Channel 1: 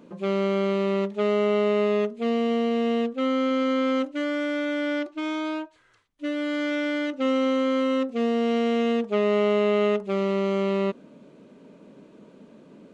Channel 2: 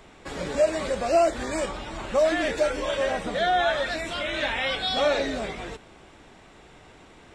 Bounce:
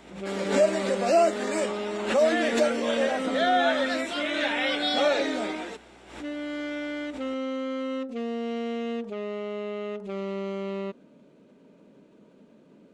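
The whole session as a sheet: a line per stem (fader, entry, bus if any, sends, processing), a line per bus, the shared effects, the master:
−6.0 dB, 0.00 s, no send, brickwall limiter −17.5 dBFS, peak gain reduction 6.5 dB
−0.5 dB, 0.00 s, no send, Butterworth high-pass 190 Hz 72 dB per octave; mains hum 60 Hz, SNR 35 dB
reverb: not used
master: notch filter 1,100 Hz, Q 14; background raised ahead of every attack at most 89 dB per second

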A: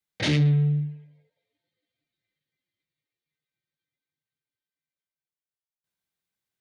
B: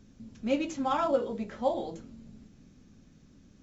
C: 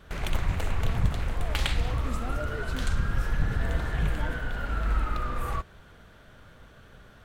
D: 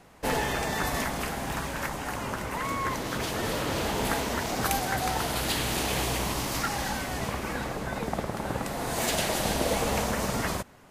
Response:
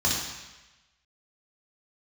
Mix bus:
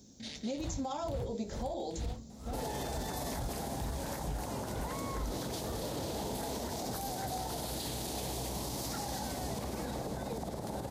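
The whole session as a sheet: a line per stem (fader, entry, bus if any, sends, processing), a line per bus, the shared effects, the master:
−11.5 dB, 0.00 s, no send, echo send −5.5 dB, high-pass filter 1,200 Hz 12 dB per octave; automatic gain control; rotating-speaker cabinet horn 5.5 Hz
+2.5 dB, 0.00 s, no send, no echo send, bass and treble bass −6 dB, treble +11 dB; downward compressor, threshold −32 dBFS, peak gain reduction 11 dB
−1.5 dB, 0.25 s, no send, no echo send, tremolo with a sine in dB 2.2 Hz, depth 32 dB
−2.0 dB, 2.30 s, no send, no echo send, brickwall limiter −21.5 dBFS, peak gain reduction 10.5 dB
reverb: not used
echo: repeating echo 206 ms, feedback 54%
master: high-pass filter 43 Hz 24 dB per octave; flat-topped bell 1,800 Hz −10.5 dB; brickwall limiter −28.5 dBFS, peak gain reduction 9 dB

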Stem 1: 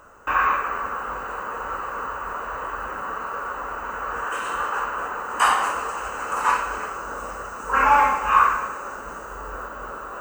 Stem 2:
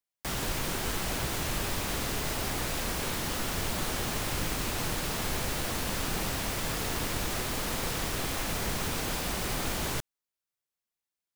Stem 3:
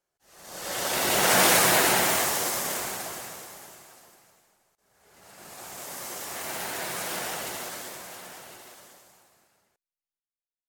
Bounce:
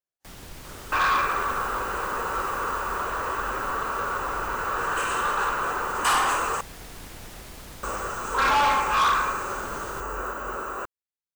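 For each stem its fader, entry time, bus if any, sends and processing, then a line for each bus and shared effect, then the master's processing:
+1.5 dB, 0.65 s, muted 0:06.61–0:07.83, no send, high-shelf EQ 3,900 Hz +6 dB; hollow resonant body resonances 370/2,400 Hz, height 7 dB; soft clipping −19 dBFS, distortion −8 dB
−12.0 dB, 0.00 s, no send, sub-octave generator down 2 octaves, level +3 dB
−16.5 dB, 0.00 s, no send, downward compressor, threshold −28 dBFS, peak gain reduction 11.5 dB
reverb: not used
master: no processing

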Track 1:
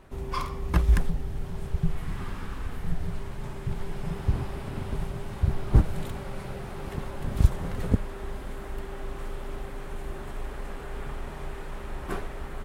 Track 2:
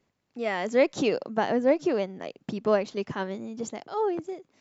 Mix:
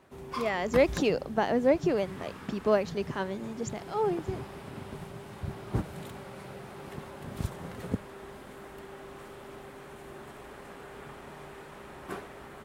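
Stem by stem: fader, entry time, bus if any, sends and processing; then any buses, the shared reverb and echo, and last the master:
−4.0 dB, 0.00 s, no send, Bessel high-pass filter 160 Hz, order 2
−1.5 dB, 0.00 s, no send, no processing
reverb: not used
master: no processing

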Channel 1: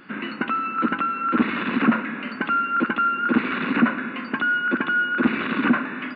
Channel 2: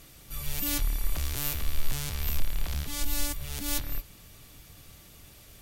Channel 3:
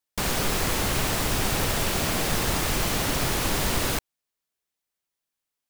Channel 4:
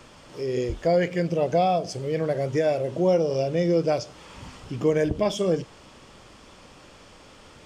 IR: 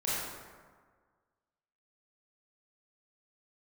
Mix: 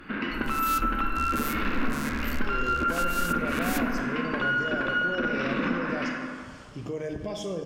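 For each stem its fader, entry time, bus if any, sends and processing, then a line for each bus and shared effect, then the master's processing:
0.0 dB, 0.00 s, send −4.5 dB, downward compressor, threshold −23 dBFS, peak gain reduction 11 dB; tube saturation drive 18 dB, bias 0.6
0.0 dB, 0.00 s, send −24 dB, adaptive Wiener filter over 25 samples
muted
−8.0 dB, 2.05 s, send −10 dB, brickwall limiter −18 dBFS, peak gain reduction 7 dB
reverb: on, RT60 1.6 s, pre-delay 23 ms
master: downward compressor 1.5 to 1, threshold −31 dBFS, peak gain reduction 6 dB

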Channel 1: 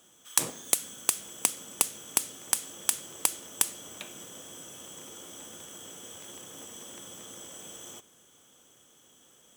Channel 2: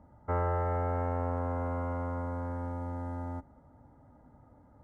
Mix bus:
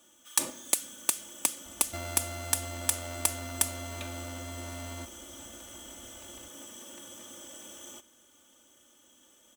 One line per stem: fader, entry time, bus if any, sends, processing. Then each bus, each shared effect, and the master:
−3.5 dB, 0.00 s, no send, no processing
+0.5 dB, 1.65 s, no send, samples sorted by size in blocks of 64 samples; downward compressor 3 to 1, threshold −41 dBFS, peak gain reduction 11 dB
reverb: not used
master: comb filter 3.4 ms, depth 78%

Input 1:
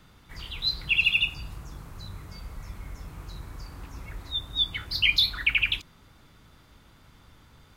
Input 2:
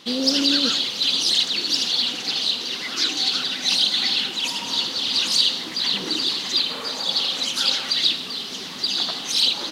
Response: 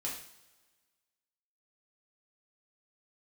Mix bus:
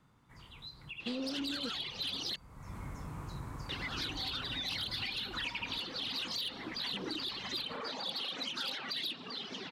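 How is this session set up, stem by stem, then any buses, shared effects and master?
0:02.48 −20.5 dB → 0:02.76 −9 dB, 0.00 s, no send, downward compressor 4 to 1, threshold −28 dBFS, peak gain reduction 9.5 dB; graphic EQ with 10 bands 125 Hz +11 dB, 250 Hz +9 dB, 500 Hz +5 dB, 1,000 Hz +11 dB, 2,000 Hz +4 dB, 8,000 Hz +7 dB
−4.5 dB, 1.00 s, muted 0:02.36–0:03.69, no send, reverb reduction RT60 0.95 s; low-pass filter 3,000 Hz 12 dB per octave; soft clipping −20.5 dBFS, distortion −17 dB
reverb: not used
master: downward compressor, threshold −35 dBFS, peak gain reduction 7.5 dB

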